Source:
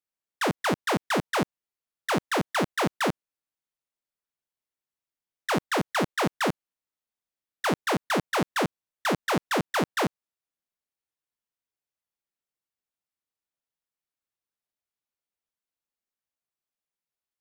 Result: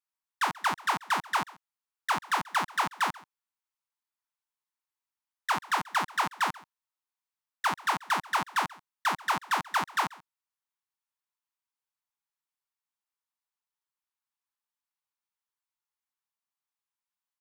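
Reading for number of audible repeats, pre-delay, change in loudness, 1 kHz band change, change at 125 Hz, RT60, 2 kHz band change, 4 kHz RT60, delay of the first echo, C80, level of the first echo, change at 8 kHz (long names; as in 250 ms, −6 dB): 1, no reverb audible, −2.5 dB, +1.5 dB, −13.5 dB, no reverb audible, −1.0 dB, no reverb audible, 135 ms, no reverb audible, −22.0 dB, −3.0 dB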